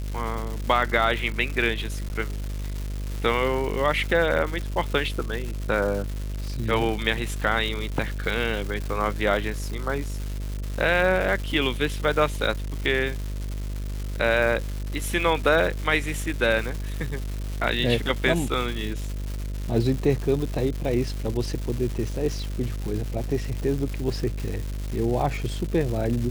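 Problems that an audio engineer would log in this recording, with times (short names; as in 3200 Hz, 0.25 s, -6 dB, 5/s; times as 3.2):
buzz 50 Hz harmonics 13 -30 dBFS
crackle 400/s -30 dBFS
2.09–2.1 gap 9.8 ms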